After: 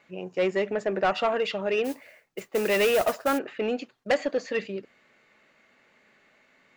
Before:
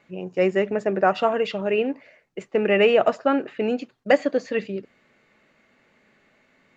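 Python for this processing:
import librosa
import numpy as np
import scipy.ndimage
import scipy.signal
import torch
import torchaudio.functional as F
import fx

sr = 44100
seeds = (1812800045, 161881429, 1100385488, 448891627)

y = fx.low_shelf(x, sr, hz=370.0, db=-8.5)
y = 10.0 ** (-18.0 / 20.0) * np.tanh(y / 10.0 ** (-18.0 / 20.0))
y = fx.mod_noise(y, sr, seeds[0], snr_db=16, at=(1.84, 3.37), fade=0.02)
y = F.gain(torch.from_numpy(y), 1.0).numpy()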